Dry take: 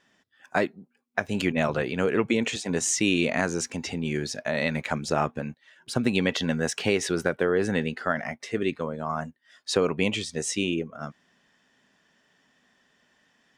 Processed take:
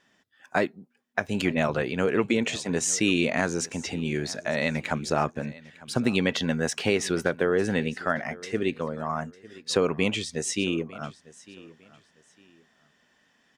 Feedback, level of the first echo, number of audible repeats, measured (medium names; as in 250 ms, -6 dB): 28%, -20.5 dB, 2